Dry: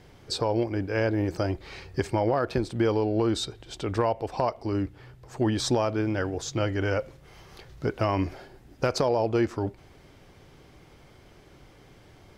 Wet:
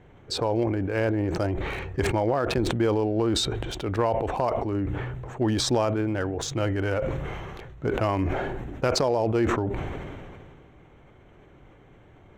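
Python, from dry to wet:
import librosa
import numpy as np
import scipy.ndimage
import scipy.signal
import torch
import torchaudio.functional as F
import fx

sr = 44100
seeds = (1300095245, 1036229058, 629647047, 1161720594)

y = fx.wiener(x, sr, points=9)
y = fx.sustainer(y, sr, db_per_s=25.0)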